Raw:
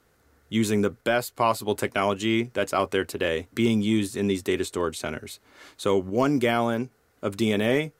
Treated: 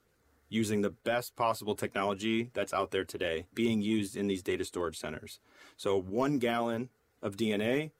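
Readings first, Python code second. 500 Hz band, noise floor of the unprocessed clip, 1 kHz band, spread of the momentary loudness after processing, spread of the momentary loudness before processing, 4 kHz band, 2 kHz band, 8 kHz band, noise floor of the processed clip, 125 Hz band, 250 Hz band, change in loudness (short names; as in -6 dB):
-7.0 dB, -65 dBFS, -7.5 dB, 10 LU, 10 LU, -7.0 dB, -8.0 dB, -8.0 dB, -72 dBFS, -8.5 dB, -7.5 dB, -7.5 dB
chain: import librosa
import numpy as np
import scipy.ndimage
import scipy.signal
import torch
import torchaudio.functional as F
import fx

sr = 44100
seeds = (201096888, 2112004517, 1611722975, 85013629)

y = fx.spec_quant(x, sr, step_db=15)
y = y * librosa.db_to_amplitude(-7.0)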